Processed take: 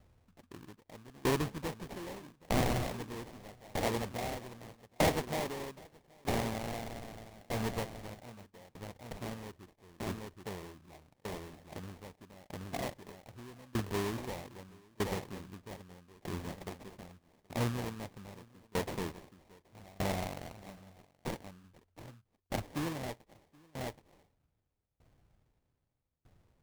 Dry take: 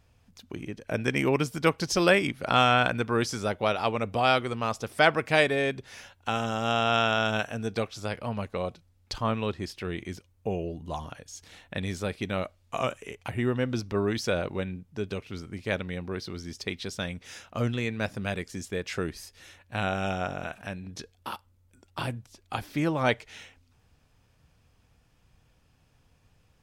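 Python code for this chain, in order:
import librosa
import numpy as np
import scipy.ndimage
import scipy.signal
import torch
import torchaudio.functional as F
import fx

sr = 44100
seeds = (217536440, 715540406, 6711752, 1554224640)

p1 = fx.sample_hold(x, sr, seeds[0], rate_hz=1400.0, jitter_pct=20)
p2 = 10.0 ** (-22.0 / 20.0) * np.tanh(p1 / 10.0 ** (-22.0 / 20.0))
p3 = p2 + fx.echo_single(p2, sr, ms=775, db=-9.5, dry=0)
y = fx.tremolo_decay(p3, sr, direction='decaying', hz=0.8, depth_db=27)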